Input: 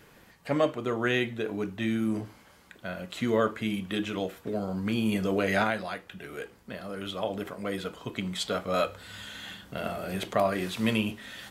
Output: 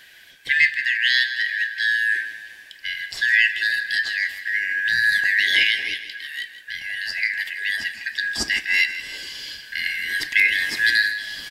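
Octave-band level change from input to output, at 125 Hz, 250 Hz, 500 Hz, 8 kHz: under -15 dB, under -15 dB, under -20 dB, +9.0 dB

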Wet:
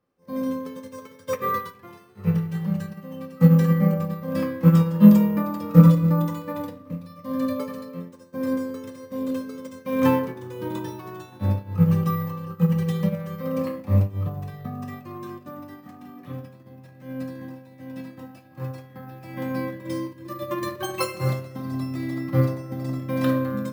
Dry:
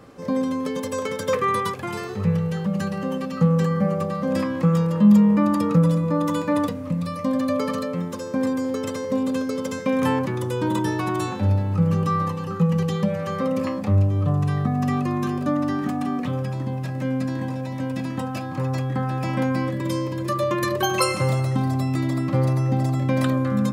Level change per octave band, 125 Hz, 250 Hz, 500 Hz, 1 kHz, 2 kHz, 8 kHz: -0.5 dB, -1.0 dB, -4.0 dB, -6.0 dB, -6.0 dB, n/a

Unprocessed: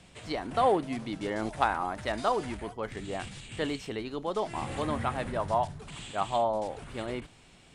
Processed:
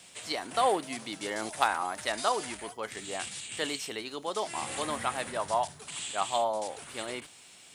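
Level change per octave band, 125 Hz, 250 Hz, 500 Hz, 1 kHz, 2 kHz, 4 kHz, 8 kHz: -11.5, -6.0, -2.5, -0.5, +2.0, +5.5, +11.5 dB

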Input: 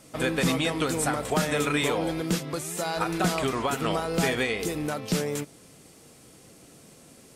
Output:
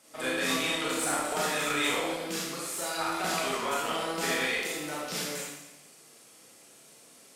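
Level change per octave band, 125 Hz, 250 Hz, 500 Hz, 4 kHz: -14.5, -8.0, -5.5, +0.5 dB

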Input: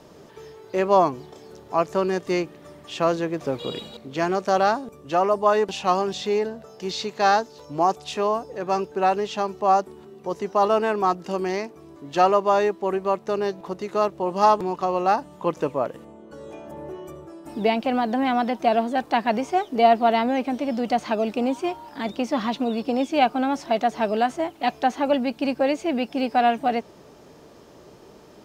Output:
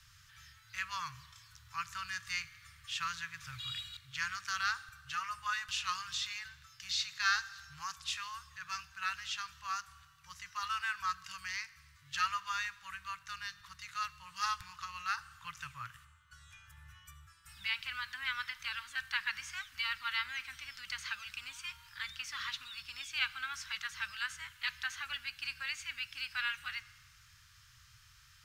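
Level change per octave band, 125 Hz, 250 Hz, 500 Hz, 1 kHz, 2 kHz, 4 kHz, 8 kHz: -19.0 dB, under -40 dB, under -40 dB, -19.5 dB, -3.5 dB, -3.5 dB, -2.5 dB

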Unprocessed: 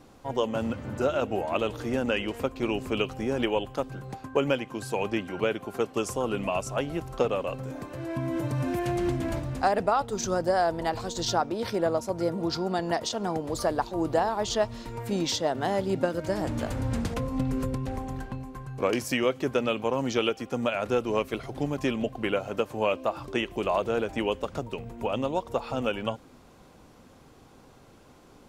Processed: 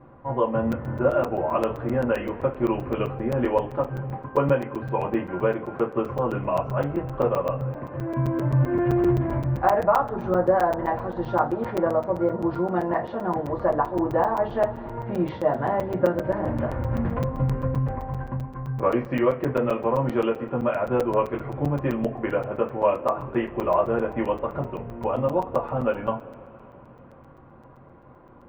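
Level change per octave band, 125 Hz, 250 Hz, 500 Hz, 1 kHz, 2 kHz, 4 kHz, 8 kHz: +7.0 dB, +3.5 dB, +4.5 dB, +4.5 dB, -1.0 dB, under -10 dB, under -15 dB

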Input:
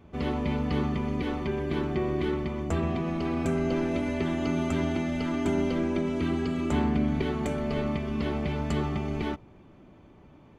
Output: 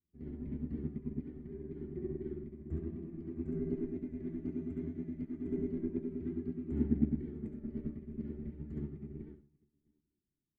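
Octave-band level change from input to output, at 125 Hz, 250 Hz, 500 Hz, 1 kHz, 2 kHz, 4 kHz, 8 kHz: -11.0 dB, -9.5 dB, -13.5 dB, under -30 dB, under -25 dB, under -35 dB, under -30 dB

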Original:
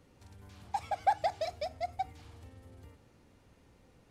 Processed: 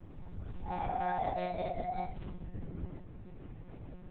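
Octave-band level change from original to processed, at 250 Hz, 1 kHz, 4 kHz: +13.5, -2.0, -8.0 dB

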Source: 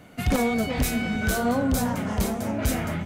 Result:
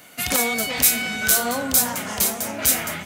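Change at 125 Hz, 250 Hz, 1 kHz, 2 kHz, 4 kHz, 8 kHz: -10.0, -6.0, +1.5, +6.0, +10.0, +14.5 dB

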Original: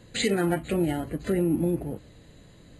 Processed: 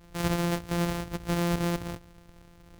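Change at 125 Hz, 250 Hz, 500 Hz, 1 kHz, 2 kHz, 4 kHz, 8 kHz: +0.5, -4.0, -5.5, +2.0, -1.5, -3.0, -2.0 dB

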